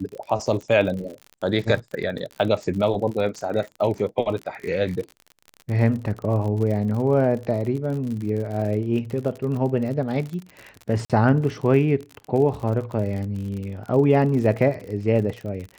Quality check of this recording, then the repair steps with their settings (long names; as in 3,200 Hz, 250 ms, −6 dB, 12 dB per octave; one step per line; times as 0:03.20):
surface crackle 52 per second −30 dBFS
0:11.05–0:11.10: drop-out 47 ms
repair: click removal
repair the gap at 0:11.05, 47 ms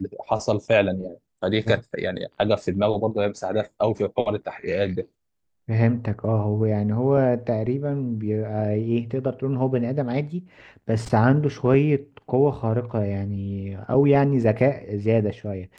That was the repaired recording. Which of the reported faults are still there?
none of them is left